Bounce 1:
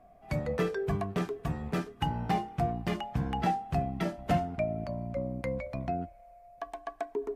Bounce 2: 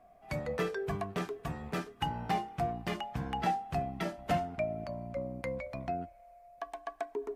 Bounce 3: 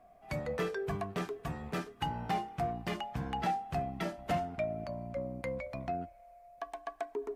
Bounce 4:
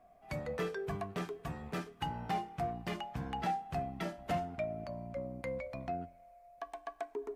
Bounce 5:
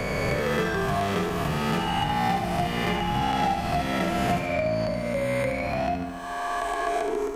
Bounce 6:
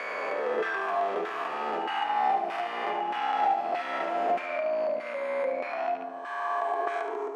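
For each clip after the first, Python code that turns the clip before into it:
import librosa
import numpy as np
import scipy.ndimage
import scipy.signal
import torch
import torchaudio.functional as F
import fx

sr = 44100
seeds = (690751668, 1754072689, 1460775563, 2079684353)

y1 = fx.low_shelf(x, sr, hz=400.0, db=-7.0)
y2 = 10.0 ** (-23.5 / 20.0) * np.tanh(y1 / 10.0 ** (-23.5 / 20.0))
y3 = fx.comb_fb(y2, sr, f0_hz=87.0, decay_s=0.54, harmonics='all', damping=0.0, mix_pct=30)
y4 = fx.spec_swells(y3, sr, rise_s=1.77)
y4 = fx.echo_feedback(y4, sr, ms=72, feedback_pct=53, wet_db=-6.0)
y4 = fx.band_squash(y4, sr, depth_pct=70)
y4 = F.gain(torch.from_numpy(y4), 8.0).numpy()
y5 = fx.rattle_buzz(y4, sr, strikes_db=-28.0, level_db=-28.0)
y5 = fx.filter_lfo_bandpass(y5, sr, shape='saw_down', hz=1.6, low_hz=560.0, high_hz=1600.0, q=1.2)
y5 = scipy.signal.sosfilt(scipy.signal.butter(4, 270.0, 'highpass', fs=sr, output='sos'), y5)
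y5 = F.gain(torch.from_numpy(y5), 1.0).numpy()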